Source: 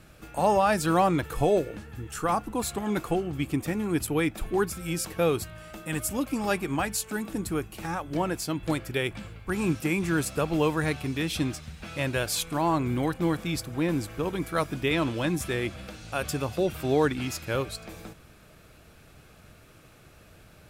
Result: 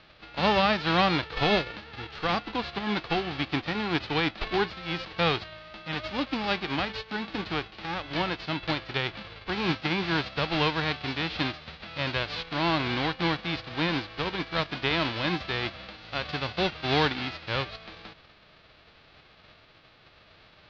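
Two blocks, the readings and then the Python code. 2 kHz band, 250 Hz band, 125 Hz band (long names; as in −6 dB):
+4.0 dB, −3.0 dB, −2.5 dB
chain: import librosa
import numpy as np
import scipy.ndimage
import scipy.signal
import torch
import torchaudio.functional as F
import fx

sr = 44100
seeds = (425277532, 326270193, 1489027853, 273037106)

y = fx.envelope_flatten(x, sr, power=0.3)
y = scipy.signal.sosfilt(scipy.signal.butter(8, 4500.0, 'lowpass', fs=sr, output='sos'), y)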